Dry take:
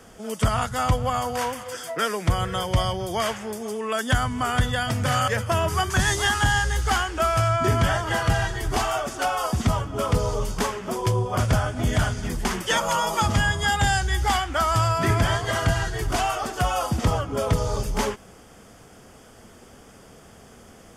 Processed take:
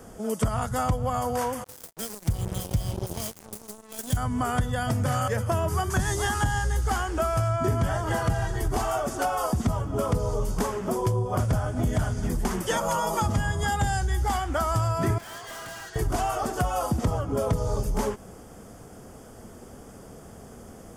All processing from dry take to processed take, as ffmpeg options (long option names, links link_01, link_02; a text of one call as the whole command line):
ffmpeg -i in.wav -filter_complex "[0:a]asettb=1/sr,asplit=3[link_01][link_02][link_03];[link_01]atrim=end=1.644[link_04];[link_02]atrim=start=1.64:end=4.17,asetpts=PTS-STARTPTS,afade=type=in:duration=0.004:curve=qsin,afade=type=out:start_time=2.526:duration=0.004:curve=qsin,equalizer=frequency=1300:width=1.3:gain=-10,acrossover=split=190|3000[link_05][link_06][link_07];[link_06]acompressor=threshold=-38dB:ratio=10:attack=3.2:release=140:knee=2.83:detection=peak[link_08];[link_05][link_08][link_07]amix=inputs=3:normalize=0,acrusher=bits=4:mix=0:aa=0.5[link_09];[link_03]atrim=start=4.166[link_10];[link_04][link_09]acrossfade=duration=0.004:curve1=hsin:curve2=qsin[link_11];[link_11][link_10]acrossfade=duration=0.004:curve1=qsin:curve2=hsin,asettb=1/sr,asplit=3[link_12][link_13][link_14];[link_12]atrim=end=15.184[link_15];[link_13]atrim=start=15.18:end=15.96,asetpts=PTS-STARTPTS,afade=type=in:duration=0.004:curve=qsin,afade=type=out:start_time=0.776:duration=0.004:curve=qsin,bandpass=frequency=3200:width_type=q:width=0.76,volume=35.5dB,asoftclip=hard,volume=-35.5dB[link_16];[link_14]atrim=start=15.956[link_17];[link_15][link_16]acrossfade=duration=0.004:curve1=hsin:curve2=qsin[link_18];[link_18][link_17]acrossfade=duration=0.004:curve1=qsin:curve2=hsin,equalizer=frequency=2900:width_type=o:width=2.3:gain=-11,acompressor=threshold=-28dB:ratio=3,volume=4.5dB" out.wav